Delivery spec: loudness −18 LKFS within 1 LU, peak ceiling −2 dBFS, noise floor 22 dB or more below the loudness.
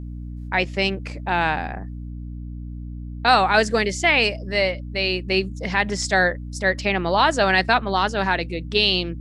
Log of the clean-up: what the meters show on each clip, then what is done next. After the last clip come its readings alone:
mains hum 60 Hz; hum harmonics up to 300 Hz; level of the hum −30 dBFS; integrated loudness −20.5 LKFS; sample peak −3.5 dBFS; target loudness −18.0 LKFS
→ mains-hum notches 60/120/180/240/300 Hz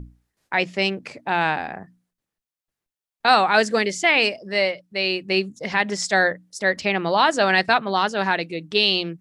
mains hum none found; integrated loudness −20.5 LKFS; sample peak −3.5 dBFS; target loudness −18.0 LKFS
→ level +2.5 dB
brickwall limiter −2 dBFS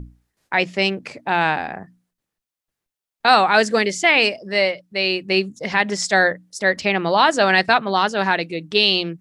integrated loudness −18.0 LKFS; sample peak −2.0 dBFS; background noise floor −88 dBFS

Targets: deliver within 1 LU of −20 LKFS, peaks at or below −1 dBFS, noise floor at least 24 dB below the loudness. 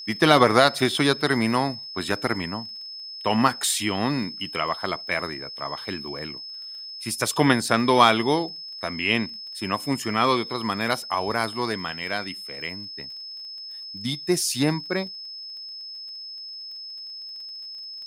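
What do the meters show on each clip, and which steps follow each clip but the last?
crackle rate 24 per second; interfering tone 5,200 Hz; level of the tone −35 dBFS; integrated loudness −25.0 LKFS; sample peak −2.5 dBFS; target loudness −20.0 LKFS
→ click removal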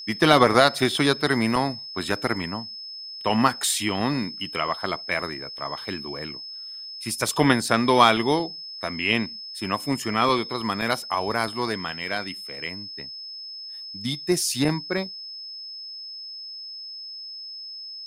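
crackle rate 0 per second; interfering tone 5,200 Hz; level of the tone −35 dBFS
→ notch filter 5,200 Hz, Q 30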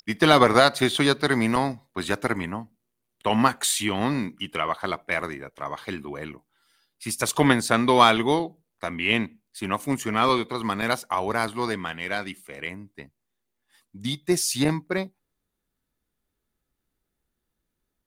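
interfering tone none found; integrated loudness −23.5 LKFS; sample peak −2.5 dBFS; target loudness −20.0 LKFS
→ level +3.5 dB
brickwall limiter −1 dBFS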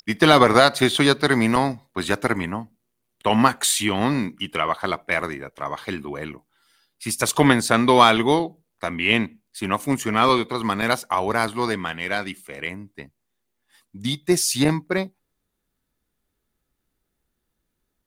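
integrated loudness −20.5 LKFS; sample peak −1.0 dBFS; background noise floor −77 dBFS

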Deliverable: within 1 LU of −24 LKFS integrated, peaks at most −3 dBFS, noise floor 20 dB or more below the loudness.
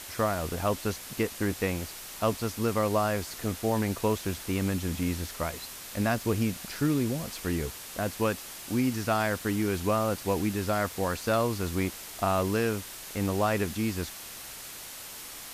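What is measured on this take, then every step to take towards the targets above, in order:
background noise floor −43 dBFS; target noise floor −50 dBFS; integrated loudness −30.0 LKFS; sample peak −13.0 dBFS; target loudness −24.0 LKFS
→ noise reduction from a noise print 7 dB
level +6 dB

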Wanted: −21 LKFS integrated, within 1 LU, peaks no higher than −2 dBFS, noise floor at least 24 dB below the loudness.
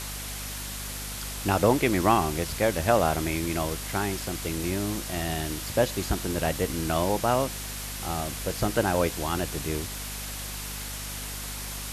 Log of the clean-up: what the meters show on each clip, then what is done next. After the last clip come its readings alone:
mains hum 50 Hz; hum harmonics up to 250 Hz; level of the hum −37 dBFS; background noise floor −36 dBFS; target noise floor −52 dBFS; integrated loudness −28.0 LKFS; sample peak −8.0 dBFS; target loudness −21.0 LKFS
→ hum removal 50 Hz, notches 5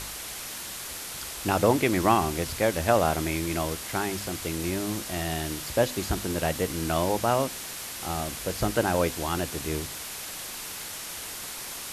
mains hum none found; background noise floor −38 dBFS; target noise floor −52 dBFS
→ broadband denoise 14 dB, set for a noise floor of −38 dBFS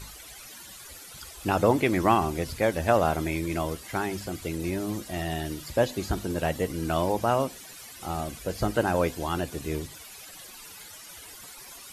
background noise floor −46 dBFS; target noise floor −52 dBFS
→ broadband denoise 6 dB, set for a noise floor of −46 dBFS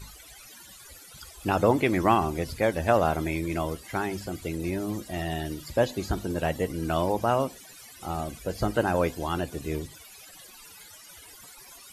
background noise floor −49 dBFS; target noise floor −52 dBFS
→ broadband denoise 6 dB, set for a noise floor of −49 dBFS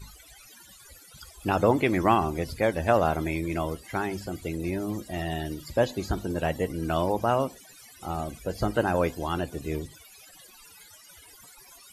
background noise floor −52 dBFS; integrated loudness −28.0 LKFS; sample peak −8.0 dBFS; target loudness −21.0 LKFS
→ level +7 dB
brickwall limiter −2 dBFS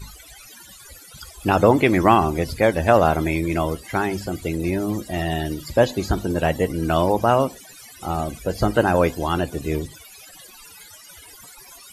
integrated loudness −21.0 LKFS; sample peak −2.0 dBFS; background noise floor −45 dBFS

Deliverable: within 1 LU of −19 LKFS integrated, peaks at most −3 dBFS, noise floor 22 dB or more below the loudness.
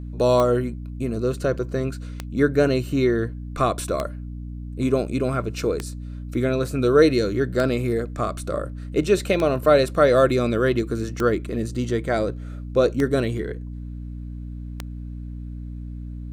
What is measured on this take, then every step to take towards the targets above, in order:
number of clicks 9; mains hum 60 Hz; hum harmonics up to 300 Hz; level of the hum −31 dBFS; integrated loudness −22.5 LKFS; sample peak −4.0 dBFS; target loudness −19.0 LKFS
→ click removal
mains-hum notches 60/120/180/240/300 Hz
level +3.5 dB
brickwall limiter −3 dBFS

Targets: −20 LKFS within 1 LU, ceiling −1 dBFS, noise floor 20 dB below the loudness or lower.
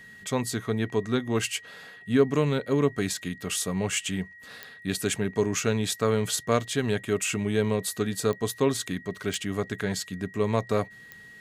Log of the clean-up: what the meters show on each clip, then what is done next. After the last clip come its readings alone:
number of clicks 4; interfering tone 1,900 Hz; level of the tone −46 dBFS; integrated loudness −27.5 LKFS; sample peak −9.0 dBFS; target loudness −20.0 LKFS
→ click removal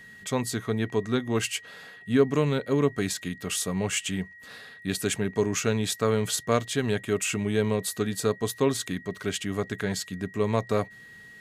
number of clicks 0; interfering tone 1,900 Hz; level of the tone −46 dBFS
→ notch filter 1,900 Hz, Q 30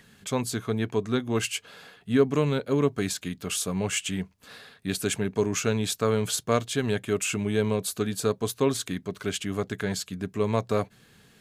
interfering tone none found; integrated loudness −27.5 LKFS; sample peak −9.0 dBFS; target loudness −20.0 LKFS
→ level +7.5 dB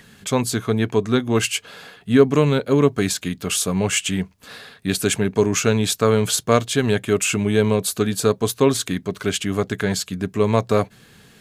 integrated loudness −20.0 LKFS; sample peak −1.5 dBFS; background noise floor −52 dBFS

